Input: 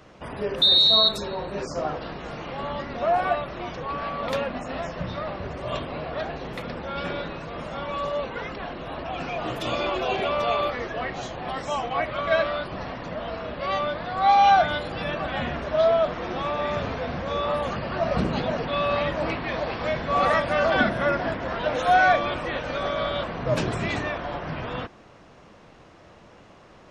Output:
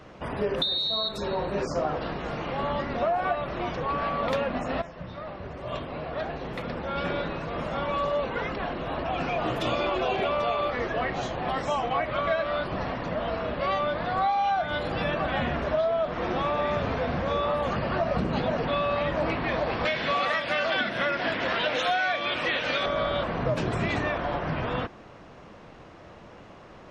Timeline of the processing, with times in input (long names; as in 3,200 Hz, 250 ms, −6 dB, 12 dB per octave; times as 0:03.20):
0:04.82–0:07.63: fade in, from −13 dB
0:19.85–0:22.86: meter weighting curve D
whole clip: downward compressor 12 to 1, threshold −25 dBFS; high-shelf EQ 5,000 Hz −8 dB; level +3 dB